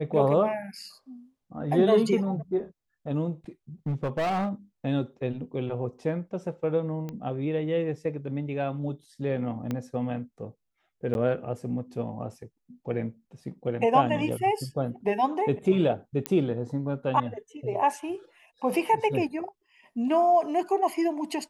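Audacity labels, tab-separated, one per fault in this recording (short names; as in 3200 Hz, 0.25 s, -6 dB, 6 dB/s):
3.860000	4.490000	clipped -24 dBFS
7.090000	7.090000	pop -23 dBFS
9.710000	9.710000	pop -18 dBFS
11.140000	11.150000	gap 11 ms
16.260000	16.260000	pop -11 dBFS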